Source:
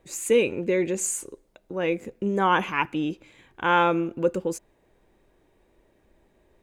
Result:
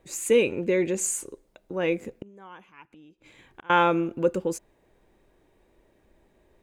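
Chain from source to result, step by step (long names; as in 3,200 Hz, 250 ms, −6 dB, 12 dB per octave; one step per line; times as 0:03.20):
0:02.21–0:03.70: gate with flip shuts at −26 dBFS, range −25 dB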